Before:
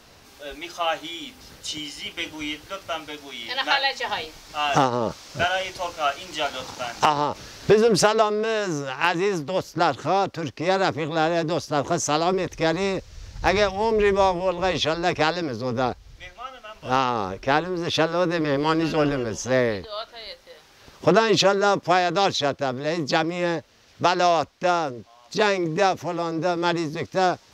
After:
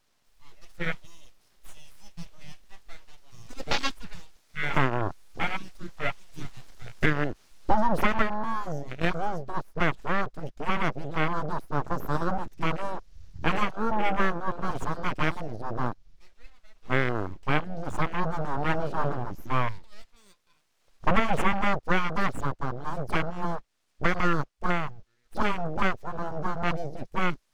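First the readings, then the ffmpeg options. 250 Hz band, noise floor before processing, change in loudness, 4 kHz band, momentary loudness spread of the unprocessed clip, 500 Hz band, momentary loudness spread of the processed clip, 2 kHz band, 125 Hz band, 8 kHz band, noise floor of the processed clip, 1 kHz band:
−5.5 dB, −52 dBFS, −6.5 dB, −12.5 dB, 13 LU, −11.5 dB, 13 LU, −4.0 dB, −1.0 dB, −16.0 dB, −69 dBFS, −6.5 dB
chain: -af "aeval=exprs='abs(val(0))':channel_layout=same,afwtdn=0.0447,volume=-1.5dB"

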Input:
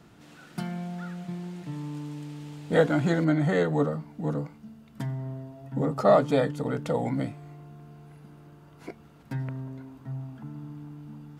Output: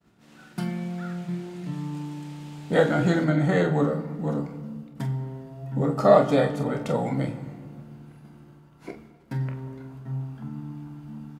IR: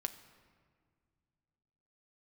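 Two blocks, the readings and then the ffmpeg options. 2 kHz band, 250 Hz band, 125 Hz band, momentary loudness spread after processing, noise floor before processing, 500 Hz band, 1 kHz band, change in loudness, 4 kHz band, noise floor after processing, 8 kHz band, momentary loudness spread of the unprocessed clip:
+2.5 dB, +2.5 dB, +3.0 dB, 18 LU, −53 dBFS, +2.5 dB, +3.0 dB, +2.5 dB, +2.5 dB, −53 dBFS, can't be measured, 20 LU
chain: -filter_complex "[0:a]aecho=1:1:28|45:0.335|0.335,agate=range=-33dB:threshold=-45dB:ratio=3:detection=peak[link_01];[1:a]atrim=start_sample=2205[link_02];[link_01][link_02]afir=irnorm=-1:irlink=0,volume=2.5dB"

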